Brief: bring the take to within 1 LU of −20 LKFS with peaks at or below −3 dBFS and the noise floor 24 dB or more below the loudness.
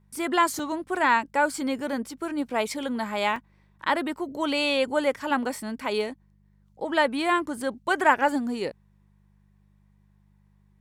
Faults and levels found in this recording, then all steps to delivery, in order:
number of dropouts 2; longest dropout 3.1 ms; mains hum 50 Hz; hum harmonics up to 200 Hz; level of the hum −58 dBFS; integrated loudness −26.0 LKFS; sample peak −5.5 dBFS; target loudness −20.0 LKFS
→ repair the gap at 0:00.59/0:03.36, 3.1 ms
hum removal 50 Hz, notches 4
level +6 dB
brickwall limiter −3 dBFS

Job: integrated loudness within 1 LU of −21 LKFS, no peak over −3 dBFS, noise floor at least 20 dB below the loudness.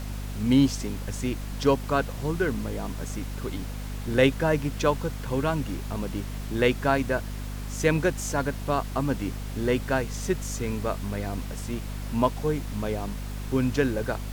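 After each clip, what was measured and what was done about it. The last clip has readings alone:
mains hum 50 Hz; hum harmonics up to 250 Hz; level of the hum −31 dBFS; background noise floor −34 dBFS; target noise floor −48 dBFS; integrated loudness −27.5 LKFS; sample peak −7.5 dBFS; target loudness −21.0 LKFS
→ mains-hum notches 50/100/150/200/250 Hz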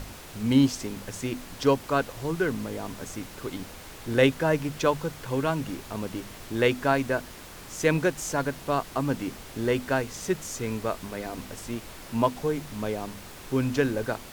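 mains hum none found; background noise floor −44 dBFS; target noise floor −48 dBFS
→ noise reduction from a noise print 6 dB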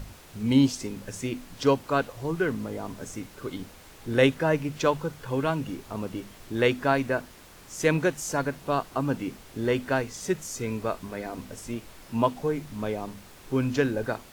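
background noise floor −50 dBFS; integrated loudness −28.0 LKFS; sample peak −8.5 dBFS; target loudness −21.0 LKFS
→ level +7 dB
brickwall limiter −3 dBFS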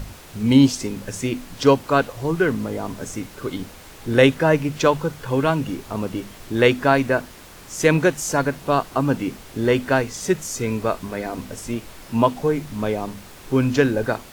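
integrated loudness −21.5 LKFS; sample peak −3.0 dBFS; background noise floor −43 dBFS

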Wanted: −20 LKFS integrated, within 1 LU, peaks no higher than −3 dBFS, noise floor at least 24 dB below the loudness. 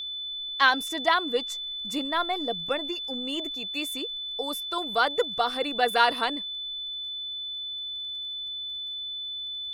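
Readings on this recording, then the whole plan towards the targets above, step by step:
crackle rate 21 per second; interfering tone 3,500 Hz; level of the tone −32 dBFS; integrated loudness −27.5 LKFS; sample peak −6.0 dBFS; target loudness −20.0 LKFS
→ click removal
notch filter 3,500 Hz, Q 30
level +7.5 dB
brickwall limiter −3 dBFS

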